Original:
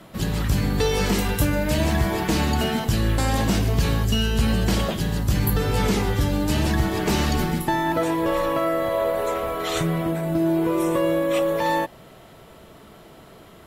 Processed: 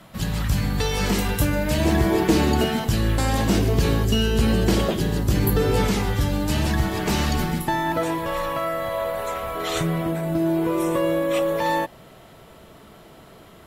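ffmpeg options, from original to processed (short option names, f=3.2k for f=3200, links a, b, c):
-af "asetnsamples=n=441:p=0,asendcmd='1.03 equalizer g -1;1.85 equalizer g 8.5;2.64 equalizer g 0.5;3.5 equalizer g 7.5;5.84 equalizer g -3;8.18 equalizer g -11.5;9.55 equalizer g -1',equalizer=f=370:t=o:w=0.92:g=-7.5"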